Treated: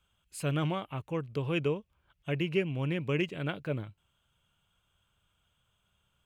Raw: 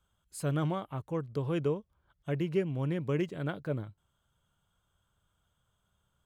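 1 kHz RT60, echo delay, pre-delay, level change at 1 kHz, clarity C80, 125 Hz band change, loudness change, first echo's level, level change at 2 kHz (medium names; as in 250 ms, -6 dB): no reverb, no echo, no reverb, +1.0 dB, no reverb, 0.0 dB, +0.5 dB, no echo, +6.5 dB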